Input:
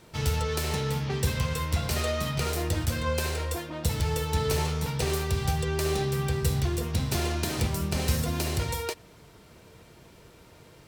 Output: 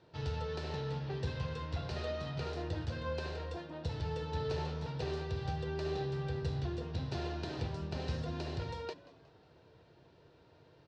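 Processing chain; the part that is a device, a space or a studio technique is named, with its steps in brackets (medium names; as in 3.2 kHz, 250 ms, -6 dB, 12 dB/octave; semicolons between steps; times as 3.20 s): frequency-shifting delay pedal into a guitar cabinet (frequency-shifting echo 181 ms, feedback 45%, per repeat +99 Hz, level -19 dB; cabinet simulation 81–4200 Hz, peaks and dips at 210 Hz -9 dB, 1.2 kHz -6 dB, 2.2 kHz -10 dB, 3.2 kHz -5 dB); trim -7.5 dB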